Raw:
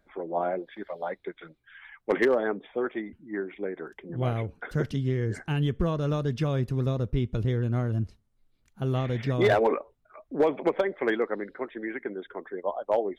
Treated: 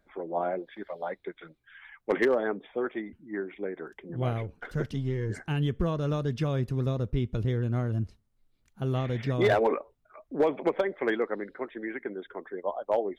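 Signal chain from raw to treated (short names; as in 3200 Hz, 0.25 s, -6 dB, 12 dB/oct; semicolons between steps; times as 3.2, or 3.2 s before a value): 4.38–5.3 half-wave gain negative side -3 dB; gain -1.5 dB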